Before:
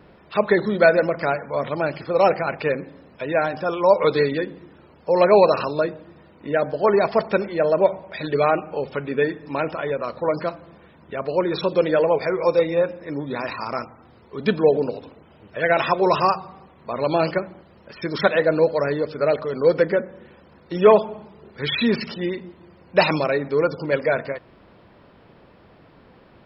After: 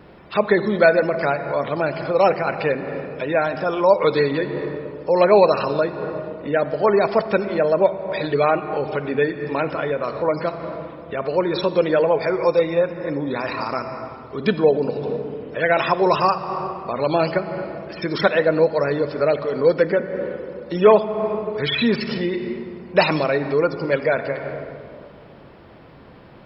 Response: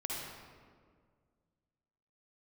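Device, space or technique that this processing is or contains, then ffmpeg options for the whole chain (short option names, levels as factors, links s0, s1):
ducked reverb: -filter_complex "[0:a]asplit=3[s0][s1][s2];[1:a]atrim=start_sample=2205[s3];[s1][s3]afir=irnorm=-1:irlink=0[s4];[s2]apad=whole_len=1166558[s5];[s4][s5]sidechaincompress=threshold=0.0316:ratio=8:attack=22:release=239,volume=0.794[s6];[s0][s6]amix=inputs=2:normalize=0"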